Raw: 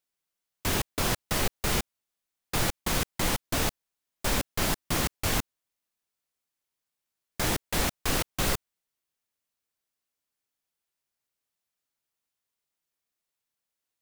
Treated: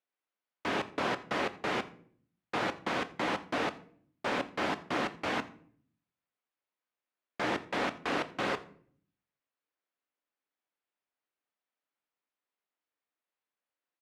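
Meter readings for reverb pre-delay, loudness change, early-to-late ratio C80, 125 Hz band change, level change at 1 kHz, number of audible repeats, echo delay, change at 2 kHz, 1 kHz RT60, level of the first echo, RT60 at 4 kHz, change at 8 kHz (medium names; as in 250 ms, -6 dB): 3 ms, -5.0 dB, 19.0 dB, -13.5 dB, +0.5 dB, 1, 84 ms, -1.5 dB, 0.50 s, -22.5 dB, 0.35 s, -20.0 dB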